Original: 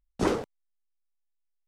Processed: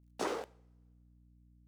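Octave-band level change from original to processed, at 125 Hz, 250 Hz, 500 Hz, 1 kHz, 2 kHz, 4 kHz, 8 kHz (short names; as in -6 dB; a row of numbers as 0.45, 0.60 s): -18.5, -14.0, -9.0, -6.0, -6.5, -5.5, -5.0 dB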